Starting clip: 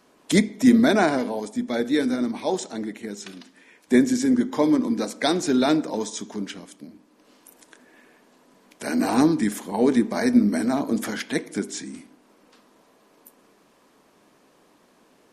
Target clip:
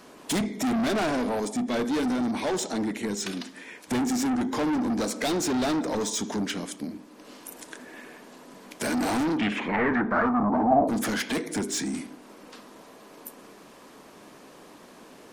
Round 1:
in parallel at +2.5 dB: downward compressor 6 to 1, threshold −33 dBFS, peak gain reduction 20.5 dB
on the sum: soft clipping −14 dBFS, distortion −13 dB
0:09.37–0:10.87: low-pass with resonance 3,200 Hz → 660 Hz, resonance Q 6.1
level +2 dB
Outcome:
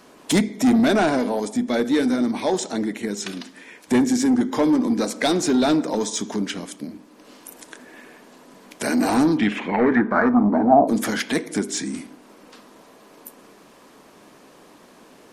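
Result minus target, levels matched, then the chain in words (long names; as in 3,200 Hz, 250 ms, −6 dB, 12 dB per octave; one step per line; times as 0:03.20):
soft clipping: distortion −8 dB
in parallel at +2.5 dB: downward compressor 6 to 1, threshold −33 dBFS, peak gain reduction 20.5 dB
on the sum: soft clipping −25.5 dBFS, distortion −5 dB
0:09.37–0:10.87: low-pass with resonance 3,200 Hz → 660 Hz, resonance Q 6.1
level +2 dB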